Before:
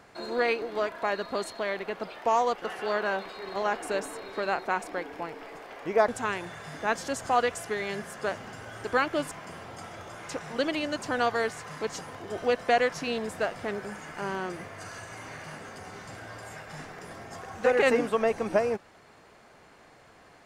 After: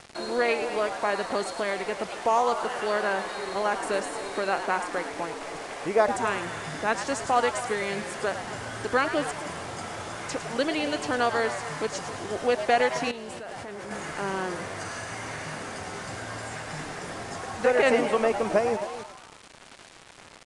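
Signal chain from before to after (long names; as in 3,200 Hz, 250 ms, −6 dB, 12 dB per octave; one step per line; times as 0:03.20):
in parallel at +1.5 dB: downward compressor, threshold −41 dBFS, peak gain reduction 21.5 dB
on the sum: slap from a distant wall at 46 metres, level −14 dB
bit reduction 7 bits
downsampling to 22,050 Hz
on a send: echo with shifted repeats 107 ms, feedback 51%, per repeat +140 Hz, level −10 dB
0:13.11–0:13.91: on the sum: output level in coarse steps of 19 dB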